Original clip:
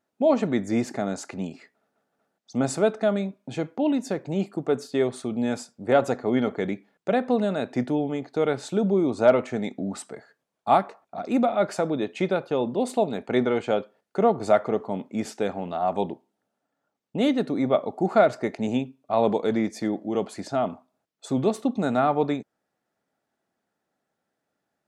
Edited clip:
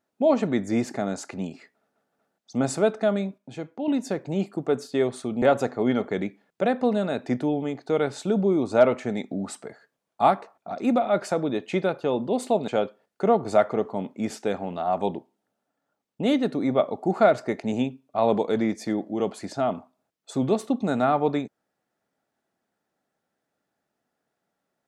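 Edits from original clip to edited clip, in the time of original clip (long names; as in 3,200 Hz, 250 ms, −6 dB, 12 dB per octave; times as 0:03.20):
0:03.38–0:03.88: clip gain −6 dB
0:05.42–0:05.89: remove
0:13.15–0:13.63: remove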